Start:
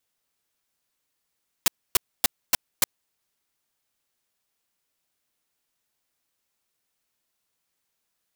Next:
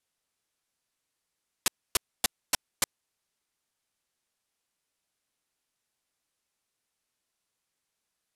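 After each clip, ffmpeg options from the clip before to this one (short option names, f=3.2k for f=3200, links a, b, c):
-af "lowpass=f=12k:w=0.5412,lowpass=f=12k:w=1.3066,volume=-2.5dB"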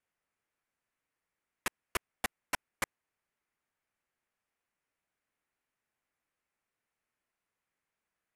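-af "highshelf=f=2.9k:t=q:w=1.5:g=-9.5,volume=-1.5dB"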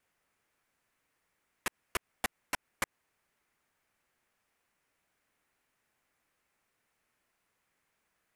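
-af "alimiter=level_in=5dB:limit=-24dB:level=0:latency=1:release=110,volume=-5dB,volume=9dB"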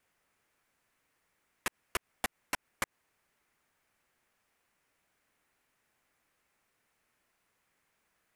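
-af "acompressor=threshold=-31dB:ratio=6,volume=2dB"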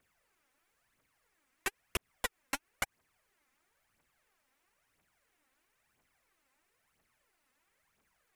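-af "aphaser=in_gain=1:out_gain=1:delay=4:decay=0.62:speed=1:type=triangular,volume=-2dB"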